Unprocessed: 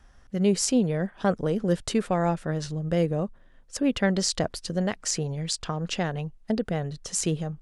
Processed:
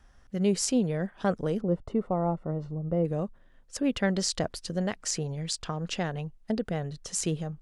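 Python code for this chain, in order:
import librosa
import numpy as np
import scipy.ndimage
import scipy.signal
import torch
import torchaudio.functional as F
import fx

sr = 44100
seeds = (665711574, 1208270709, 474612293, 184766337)

y = fx.savgol(x, sr, points=65, at=(1.6, 3.04), fade=0.02)
y = y * 10.0 ** (-3.0 / 20.0)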